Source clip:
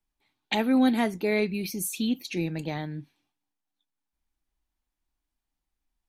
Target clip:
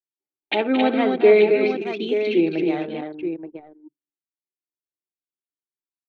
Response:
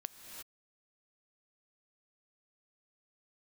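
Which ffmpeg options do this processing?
-af "highpass=frequency=240:width=0.5412,highpass=frequency=240:width=1.3066,equalizer=frequency=240:width_type=q:width=4:gain=-9,equalizer=frequency=380:width_type=q:width=4:gain=9,equalizer=frequency=960:width_type=q:width=4:gain=-9,equalizer=frequency=1800:width_type=q:width=4:gain=-7,lowpass=frequency=3200:width=0.5412,lowpass=frequency=3200:width=1.3066,aphaser=in_gain=1:out_gain=1:delay=3.4:decay=0.31:speed=0.8:type=sinusoidal,aecho=1:1:62|222|268|338|878:0.211|0.316|0.562|0.119|0.376,anlmdn=0.631,volume=7dB"

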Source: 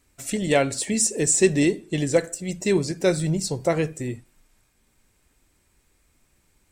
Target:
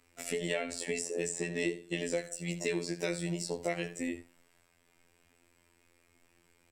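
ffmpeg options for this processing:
ffmpeg -i in.wav -filter_complex "[0:a]bass=frequency=250:gain=-11,treble=frequency=4000:gain=-8,alimiter=limit=-13dB:level=0:latency=1:release=177,aecho=1:1:12|75:0.596|0.178,afftfilt=real='hypot(re,im)*cos(PI*b)':imag='0':win_size=2048:overlap=0.75,acrossover=split=140|2000[link_01][link_02][link_03];[link_01]acompressor=threshold=-53dB:ratio=4[link_04];[link_02]acompressor=threshold=-38dB:ratio=4[link_05];[link_03]acompressor=threshold=-41dB:ratio=4[link_06];[link_04][link_05][link_06]amix=inputs=3:normalize=0,volume=4dB" out.wav

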